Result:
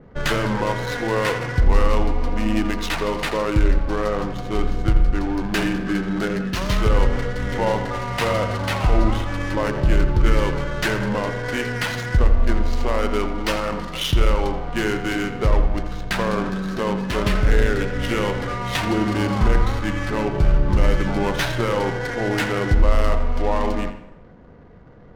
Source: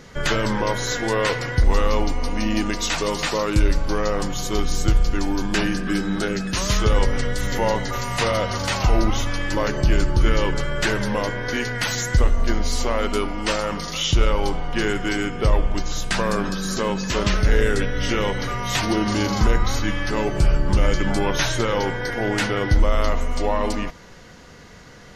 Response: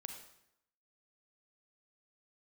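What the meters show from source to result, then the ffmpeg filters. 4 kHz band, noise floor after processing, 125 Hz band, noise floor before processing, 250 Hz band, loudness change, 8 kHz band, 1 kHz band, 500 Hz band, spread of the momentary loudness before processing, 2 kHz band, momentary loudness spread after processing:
-3.0 dB, -40 dBFS, +1.0 dB, -43 dBFS, +1.0 dB, +0.5 dB, -8.0 dB, +0.5 dB, +0.5 dB, 5 LU, -0.5 dB, 5 LU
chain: -filter_complex "[0:a]adynamicequalizer=threshold=0.00794:dfrequency=6900:dqfactor=1.1:tfrequency=6900:tqfactor=1.1:attack=5:release=100:ratio=0.375:range=2.5:mode=cutabove:tftype=bell,adynamicsmooth=sensitivity=4:basefreq=630,asplit=2[a][b];[1:a]atrim=start_sample=2205,highshelf=f=6k:g=-10.5,adelay=84[c];[b][c]afir=irnorm=-1:irlink=0,volume=-5dB[d];[a][d]amix=inputs=2:normalize=0"

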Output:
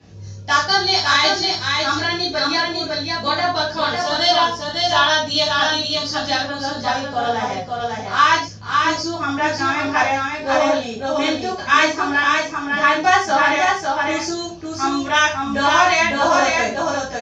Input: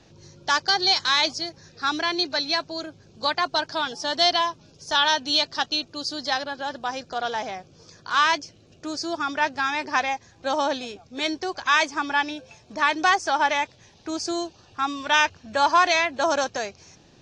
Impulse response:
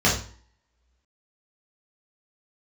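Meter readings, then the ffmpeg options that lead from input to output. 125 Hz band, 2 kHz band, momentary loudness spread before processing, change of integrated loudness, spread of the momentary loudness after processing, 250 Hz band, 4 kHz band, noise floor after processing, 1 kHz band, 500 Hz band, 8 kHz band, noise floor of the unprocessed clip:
+16.5 dB, +7.0 dB, 14 LU, +6.0 dB, 8 LU, +8.0 dB, +4.5 dB, -32 dBFS, +6.5 dB, +7.5 dB, +6.5 dB, -55 dBFS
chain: -filter_complex "[0:a]aecho=1:1:552:0.668[a];[1:a]atrim=start_sample=2205,atrim=end_sample=6174[b];[a][b]afir=irnorm=-1:irlink=0,volume=-12.5dB"

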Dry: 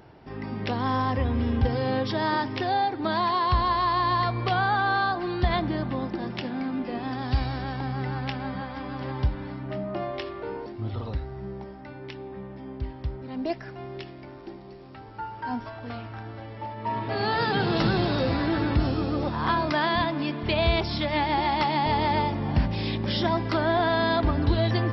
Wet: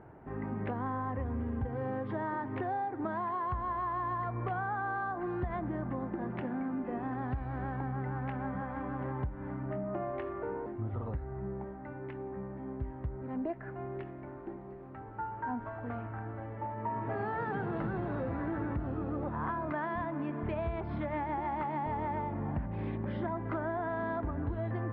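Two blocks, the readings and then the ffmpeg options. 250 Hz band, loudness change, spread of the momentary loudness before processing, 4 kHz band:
-8.0 dB, -10.0 dB, 15 LU, under -30 dB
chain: -af "lowpass=f=1.8k:w=0.5412,lowpass=f=1.8k:w=1.3066,acompressor=threshold=-30dB:ratio=6,volume=-2dB"

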